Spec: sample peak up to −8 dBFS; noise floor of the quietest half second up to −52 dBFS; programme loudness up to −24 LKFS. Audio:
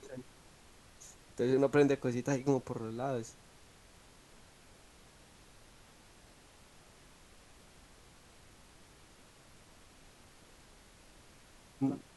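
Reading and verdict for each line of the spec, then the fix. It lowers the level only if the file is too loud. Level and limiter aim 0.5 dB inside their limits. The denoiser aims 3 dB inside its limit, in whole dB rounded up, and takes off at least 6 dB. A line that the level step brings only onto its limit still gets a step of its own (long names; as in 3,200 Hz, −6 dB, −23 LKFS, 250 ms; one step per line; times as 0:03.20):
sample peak −16.0 dBFS: in spec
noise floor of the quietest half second −59 dBFS: in spec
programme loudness −33.0 LKFS: in spec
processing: no processing needed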